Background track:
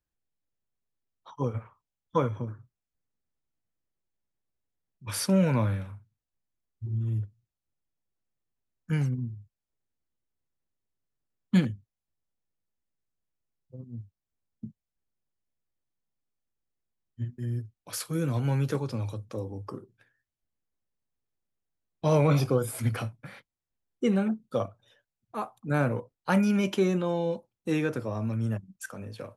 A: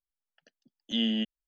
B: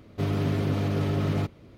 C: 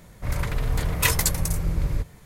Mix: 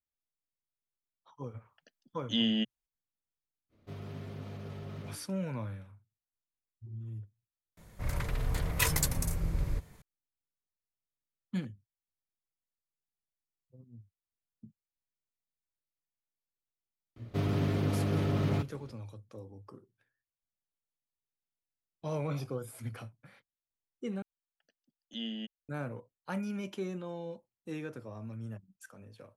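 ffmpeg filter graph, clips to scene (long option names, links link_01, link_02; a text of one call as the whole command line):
ffmpeg -i bed.wav -i cue0.wav -i cue1.wav -i cue2.wav -filter_complex "[1:a]asplit=2[link_01][link_02];[2:a]asplit=2[link_03][link_04];[0:a]volume=-12.5dB[link_05];[link_03]bandreject=frequency=60:width_type=h:width=6,bandreject=frequency=120:width_type=h:width=6,bandreject=frequency=180:width_type=h:width=6,bandreject=frequency=240:width_type=h:width=6,bandreject=frequency=300:width_type=h:width=6,bandreject=frequency=360:width_type=h:width=6,bandreject=frequency=420:width_type=h:width=6,bandreject=frequency=480:width_type=h:width=6[link_06];[link_05]asplit=2[link_07][link_08];[link_07]atrim=end=24.224[link_09];[link_02]atrim=end=1.47,asetpts=PTS-STARTPTS,volume=-11dB[link_10];[link_08]atrim=start=25.686[link_11];[link_01]atrim=end=1.47,asetpts=PTS-STARTPTS,volume=-1dB,afade=type=in:duration=0.004:curve=hsin,afade=type=out:start_time=1.466:duration=0.004:curve=hsin,adelay=1400[link_12];[link_06]atrim=end=1.77,asetpts=PTS-STARTPTS,volume=-16.5dB,afade=type=in:duration=0.05,afade=type=out:start_time=1.72:duration=0.05,adelay=162729S[link_13];[3:a]atrim=end=2.25,asetpts=PTS-STARTPTS,volume=-7.5dB,afade=type=in:duration=0.004:curve=hsin,afade=type=out:start_time=2.246:duration=0.004:curve=hsin,adelay=7770[link_14];[link_04]atrim=end=1.77,asetpts=PTS-STARTPTS,volume=-4dB,afade=type=in:duration=0.004:curve=hsin,afade=type=out:start_time=1.766:duration=0.004:curve=hsin,adelay=756756S[link_15];[link_09][link_10]acrossfade=duration=0.004:curve1=hsin:curve2=hsin[link_16];[link_16][link_11]acrossfade=duration=0.004:curve1=hsin:curve2=hsin[link_17];[link_17][link_12][link_13][link_14][link_15]amix=inputs=5:normalize=0" out.wav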